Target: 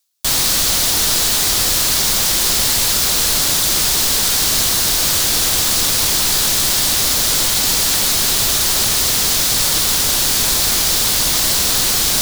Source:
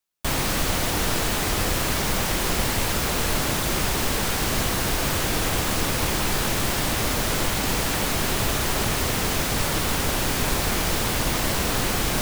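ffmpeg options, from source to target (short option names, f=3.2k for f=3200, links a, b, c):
-af "tiltshelf=f=1.2k:g=-4.5,areverse,acompressor=mode=upward:threshold=-29dB:ratio=2.5,areverse,highshelf=f=3.2k:t=q:w=1.5:g=6,volume=2.5dB"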